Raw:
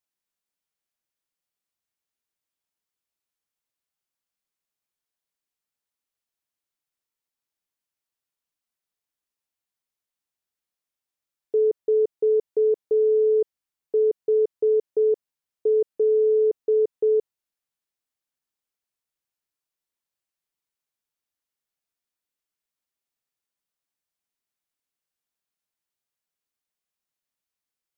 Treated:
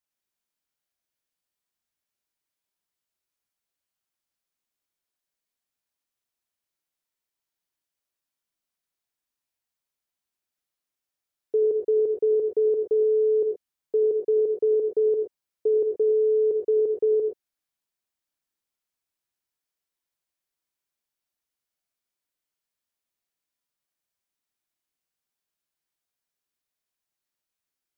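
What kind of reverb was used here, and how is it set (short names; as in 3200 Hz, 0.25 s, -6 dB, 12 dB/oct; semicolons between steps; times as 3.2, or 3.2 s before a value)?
non-linear reverb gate 0.14 s rising, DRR 1.5 dB; gain -1.5 dB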